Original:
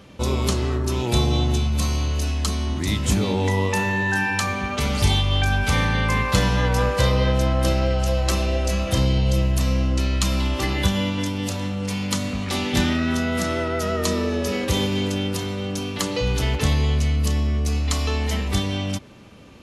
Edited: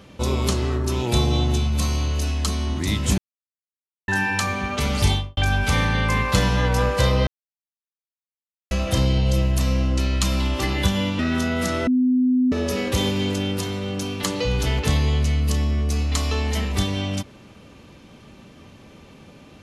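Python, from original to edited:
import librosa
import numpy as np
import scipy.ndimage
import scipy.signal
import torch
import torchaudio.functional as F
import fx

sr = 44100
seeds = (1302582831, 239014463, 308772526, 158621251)

y = fx.studio_fade_out(x, sr, start_s=5.07, length_s=0.3)
y = fx.edit(y, sr, fx.silence(start_s=3.18, length_s=0.9),
    fx.silence(start_s=7.27, length_s=1.44),
    fx.cut(start_s=11.19, length_s=1.76),
    fx.bleep(start_s=13.63, length_s=0.65, hz=253.0, db=-15.0), tone=tone)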